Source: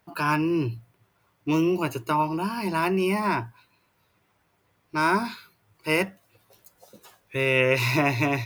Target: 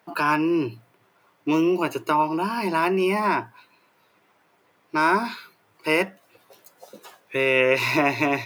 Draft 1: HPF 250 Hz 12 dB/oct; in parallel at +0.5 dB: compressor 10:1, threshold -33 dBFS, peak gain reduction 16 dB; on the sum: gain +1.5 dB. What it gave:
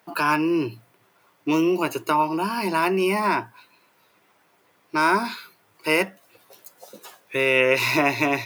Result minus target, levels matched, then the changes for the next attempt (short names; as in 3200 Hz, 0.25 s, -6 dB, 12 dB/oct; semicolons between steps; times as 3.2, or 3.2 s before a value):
8000 Hz band +4.5 dB
add after HPF: high shelf 4500 Hz -6.5 dB